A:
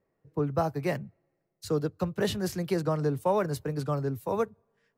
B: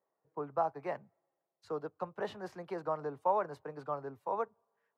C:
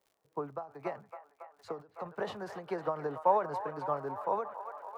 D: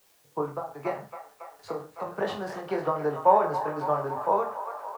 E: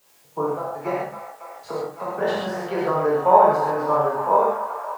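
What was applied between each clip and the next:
resonant band-pass 900 Hz, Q 1.8
surface crackle 99 per second −60 dBFS; delay with a band-pass on its return 278 ms, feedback 75%, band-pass 1,300 Hz, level −10.5 dB; every ending faded ahead of time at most 170 dB per second; level +4 dB
background noise white −71 dBFS; on a send: reverse bouncing-ball delay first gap 20 ms, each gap 1.15×, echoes 5; on the sum: level +5 dB
reverb whose tail is shaped and stops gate 160 ms flat, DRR −4.5 dB; level +1 dB

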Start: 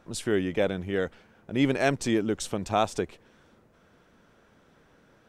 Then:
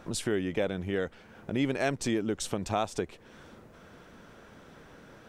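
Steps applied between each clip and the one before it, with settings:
downward compressor 2 to 1, threshold −44 dBFS, peak gain reduction 14 dB
level +8 dB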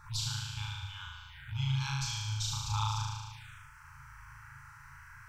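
flutter between parallel walls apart 6.4 metres, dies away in 1.5 s
phaser swept by the level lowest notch 490 Hz, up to 1,900 Hz, full sweep at −28 dBFS
brick-wall band-stop 140–820 Hz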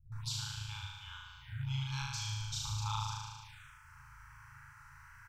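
multiband delay without the direct sound lows, highs 120 ms, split 170 Hz
level −3.5 dB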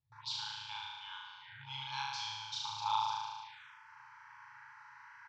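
loudspeaker in its box 460–4,600 Hz, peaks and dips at 890 Hz +7 dB, 1,300 Hz −7 dB, 2,600 Hz −4 dB
level +4 dB

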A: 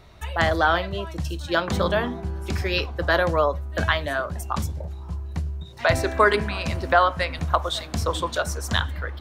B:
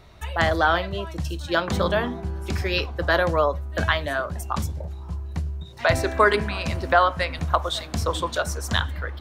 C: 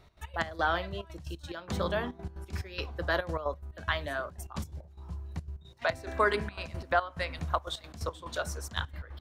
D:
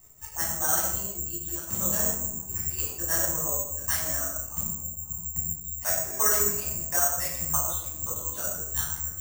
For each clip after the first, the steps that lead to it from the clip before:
no processing that can be heard
gate pattern "x.x.x..xxxxx." 178 BPM −12 dB; level −8.5 dB
convolution reverb RT60 0.80 s, pre-delay 11 ms, DRR −5.5 dB; bad sample-rate conversion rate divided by 6×, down filtered, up zero stuff; level −12.5 dB

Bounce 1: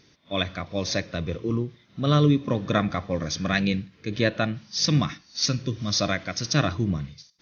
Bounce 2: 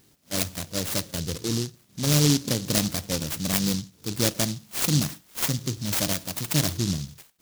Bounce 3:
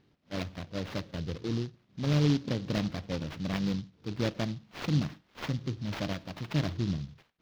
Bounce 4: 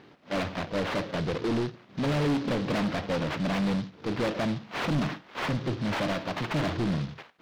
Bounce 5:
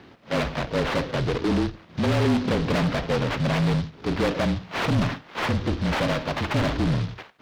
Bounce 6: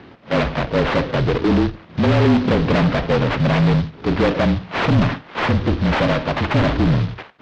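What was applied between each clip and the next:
short delay modulated by noise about 4,900 Hz, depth 0.29 ms; level −1 dB
high-frequency loss of the air 270 metres; level −4 dB
mid-hump overdrive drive 33 dB, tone 1,400 Hz, clips at −13.5 dBFS; level −4.5 dB
frequency shifter −32 Hz; level +5 dB
high-frequency loss of the air 130 metres; level +7 dB

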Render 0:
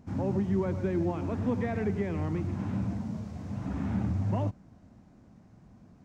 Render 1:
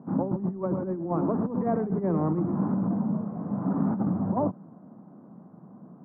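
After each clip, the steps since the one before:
elliptic band-pass filter 160–1,200 Hz, stop band 50 dB
compressor whose output falls as the input rises −33 dBFS, ratio −0.5
level +7.5 dB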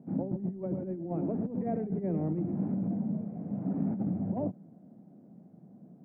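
drawn EQ curve 170 Hz 0 dB, 710 Hz −3 dB, 1,100 Hz −20 dB, 2,300 Hz +4 dB
level −4.5 dB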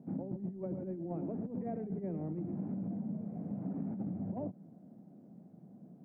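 downward compressor 4 to 1, threshold −34 dBFS, peak gain reduction 7.5 dB
level −1.5 dB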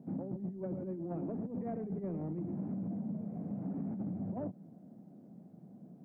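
soft clipping −29.5 dBFS, distortion −23 dB
level +1 dB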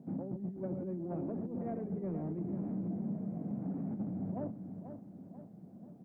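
repeating echo 488 ms, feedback 49%, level −9 dB

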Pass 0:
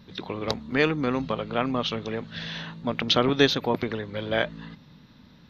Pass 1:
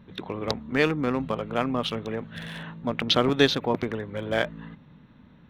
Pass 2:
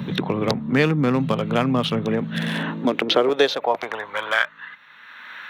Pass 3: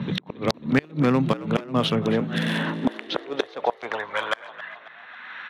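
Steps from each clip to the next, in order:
adaptive Wiener filter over 9 samples
high-pass filter sweep 140 Hz → 1,600 Hz, 0:02.01–0:04.67; multiband upward and downward compressor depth 70%; level +4 dB
gate with flip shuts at −8 dBFS, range −30 dB; echo with shifted repeats 271 ms, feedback 63%, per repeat +57 Hz, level −16 dB; low-pass that shuts in the quiet parts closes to 2,600 Hz, open at −20.5 dBFS

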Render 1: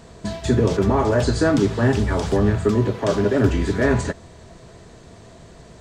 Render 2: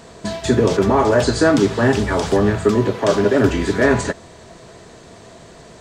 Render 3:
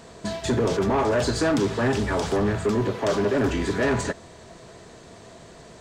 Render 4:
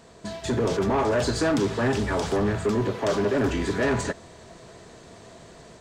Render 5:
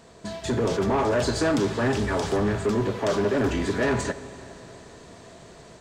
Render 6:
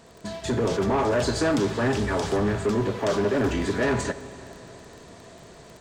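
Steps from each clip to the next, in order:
low-shelf EQ 150 Hz −11 dB; level +5.5 dB
soft clipping −12.5 dBFS, distortion −12 dB; level −4 dB
automatic gain control gain up to 4.5 dB; level −5.5 dB
four-comb reverb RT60 3.8 s, combs from 31 ms, DRR 14 dB
surface crackle 17 per second −37 dBFS

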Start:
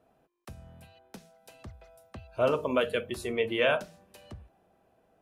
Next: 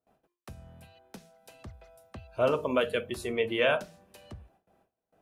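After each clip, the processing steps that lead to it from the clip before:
noise gate with hold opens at −56 dBFS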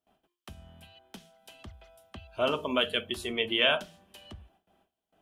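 thirty-one-band graphic EQ 125 Hz −10 dB, 500 Hz −8 dB, 3,150 Hz +12 dB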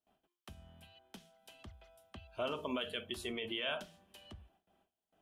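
brickwall limiter −21.5 dBFS, peak gain reduction 11 dB
level −6 dB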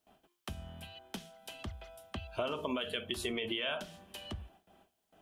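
downward compressor 4 to 1, threshold −44 dBFS, peak gain reduction 9.5 dB
level +10.5 dB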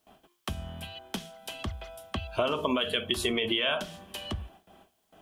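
hollow resonant body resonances 1,100/3,300 Hz, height 6 dB
level +7.5 dB

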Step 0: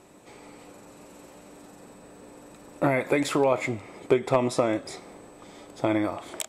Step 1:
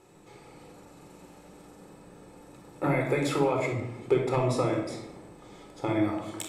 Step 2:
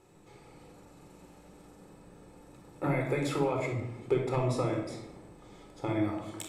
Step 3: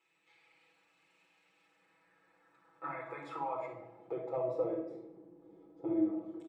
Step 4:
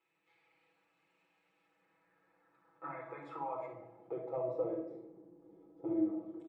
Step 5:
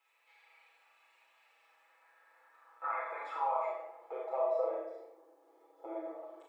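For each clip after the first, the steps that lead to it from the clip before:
rectangular room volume 2,200 cubic metres, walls furnished, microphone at 4.1 metres; level −7 dB
low-shelf EQ 110 Hz +7 dB; level −4.5 dB
comb filter 6.1 ms, depth 100%; band-pass filter sweep 2,500 Hz → 370 Hz, 0:01.61–0:05.28; level −3.5 dB
high-shelf EQ 2,500 Hz −10.5 dB; level −1.5 dB
high-pass filter 610 Hz 24 dB per octave; four-comb reverb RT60 0.38 s, combs from 27 ms, DRR 0 dB; level +6.5 dB

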